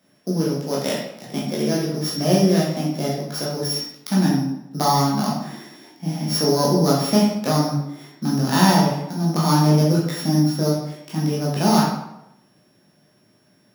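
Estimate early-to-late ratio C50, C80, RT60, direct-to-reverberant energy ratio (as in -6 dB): 2.5 dB, 5.5 dB, 0.85 s, -5.5 dB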